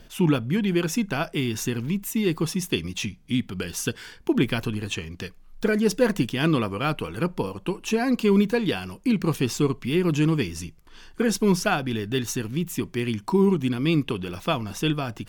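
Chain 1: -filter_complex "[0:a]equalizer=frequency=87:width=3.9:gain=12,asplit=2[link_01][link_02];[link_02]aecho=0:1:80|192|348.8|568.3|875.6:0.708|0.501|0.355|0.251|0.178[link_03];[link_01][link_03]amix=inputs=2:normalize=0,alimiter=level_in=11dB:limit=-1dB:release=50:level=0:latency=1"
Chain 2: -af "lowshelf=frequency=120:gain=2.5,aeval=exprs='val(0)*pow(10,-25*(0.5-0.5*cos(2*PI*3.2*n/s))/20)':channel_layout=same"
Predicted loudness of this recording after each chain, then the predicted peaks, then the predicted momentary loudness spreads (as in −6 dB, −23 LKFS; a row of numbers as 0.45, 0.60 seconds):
−12.0, −30.5 LKFS; −1.0, −11.0 dBFS; 5, 13 LU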